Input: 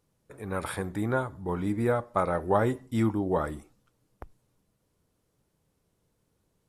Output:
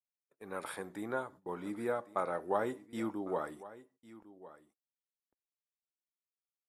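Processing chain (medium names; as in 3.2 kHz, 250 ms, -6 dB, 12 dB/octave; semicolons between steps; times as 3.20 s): high-pass 270 Hz 12 dB/octave; gate -45 dBFS, range -37 dB; delay 1103 ms -17.5 dB; trim -7.5 dB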